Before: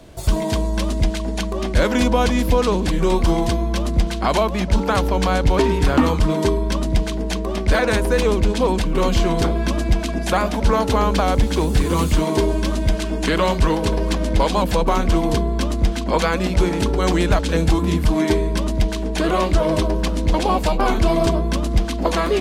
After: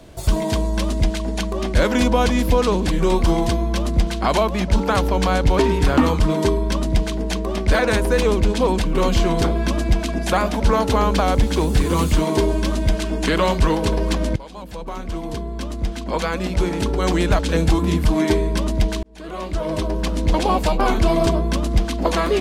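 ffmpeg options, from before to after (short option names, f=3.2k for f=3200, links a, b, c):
-filter_complex "[0:a]asplit=3[a][b][c];[a]atrim=end=14.36,asetpts=PTS-STARTPTS,afade=t=out:st=14.356:d=0.004:c=hsin:silence=0.0794328[d];[b]atrim=start=14.36:end=19.03,asetpts=PTS-STARTPTS,afade=t=in:d=3.15:silence=0.0794328,afade=t=out:st=4.666:d=0.004:c=hsin[e];[c]atrim=start=19.03,asetpts=PTS-STARTPTS,afade=t=in:d=1.22[f];[d][e][f]concat=n=3:v=0:a=1"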